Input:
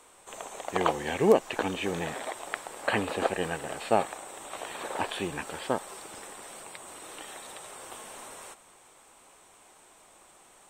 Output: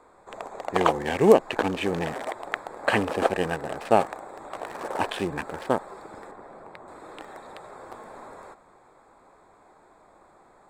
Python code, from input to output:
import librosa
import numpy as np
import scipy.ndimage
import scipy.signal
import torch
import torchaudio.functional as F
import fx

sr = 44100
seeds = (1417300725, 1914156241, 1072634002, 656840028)

y = fx.wiener(x, sr, points=15)
y = fx.high_shelf(y, sr, hz=2700.0, db=-12.0, at=(6.31, 6.88))
y = y * 10.0 ** (5.0 / 20.0)